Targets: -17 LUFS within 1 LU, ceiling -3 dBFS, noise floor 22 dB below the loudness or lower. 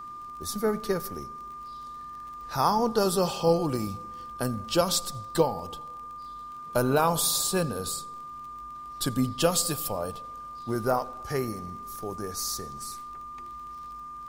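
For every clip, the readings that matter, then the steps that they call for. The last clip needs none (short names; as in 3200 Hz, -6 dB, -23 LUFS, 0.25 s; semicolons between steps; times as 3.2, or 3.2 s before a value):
ticks 32/s; steady tone 1200 Hz; tone level -38 dBFS; loudness -28.0 LUFS; peak -10.0 dBFS; loudness target -17.0 LUFS
-> de-click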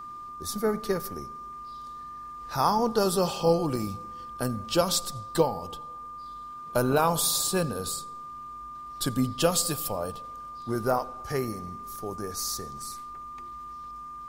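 ticks 0.21/s; steady tone 1200 Hz; tone level -38 dBFS
-> notch 1200 Hz, Q 30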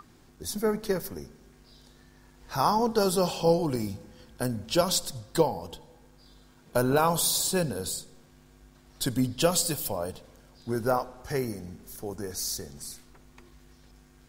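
steady tone none; loudness -28.0 LUFS; peak -10.0 dBFS; loudness target -17.0 LUFS
-> gain +11 dB; limiter -3 dBFS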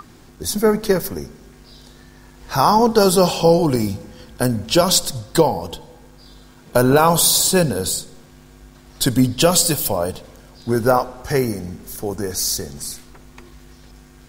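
loudness -17.5 LUFS; peak -3.0 dBFS; noise floor -46 dBFS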